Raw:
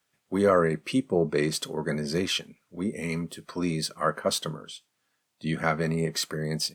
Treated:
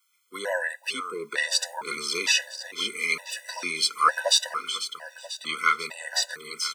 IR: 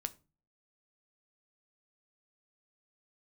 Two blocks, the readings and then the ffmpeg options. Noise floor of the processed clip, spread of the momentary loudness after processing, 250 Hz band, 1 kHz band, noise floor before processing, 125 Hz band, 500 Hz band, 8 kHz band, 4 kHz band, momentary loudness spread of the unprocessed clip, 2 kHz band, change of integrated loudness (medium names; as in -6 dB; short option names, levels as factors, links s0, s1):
-63 dBFS, 13 LU, -17.0 dB, +4.5 dB, -77 dBFS, -26.0 dB, -8.5 dB, +7.0 dB, +7.5 dB, 12 LU, +7.5 dB, +2.0 dB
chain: -filter_complex "[0:a]highpass=1200,acrossover=split=7400[s0][s1];[s1]acompressor=threshold=0.00158:ratio=4:attack=1:release=60[s2];[s0][s2]amix=inputs=2:normalize=0,highshelf=f=10000:g=9,dynaudnorm=f=200:g=13:m=1.88,aecho=1:1:493|986|1479|1972|2465|2958:0.251|0.143|0.0816|0.0465|0.0265|0.0151,afftfilt=real='re*gt(sin(2*PI*1.1*pts/sr)*(1-2*mod(floor(b*sr/1024/500),2)),0)':imag='im*gt(sin(2*PI*1.1*pts/sr)*(1-2*mod(floor(b*sr/1024/500),2)),0)':win_size=1024:overlap=0.75,volume=2.24"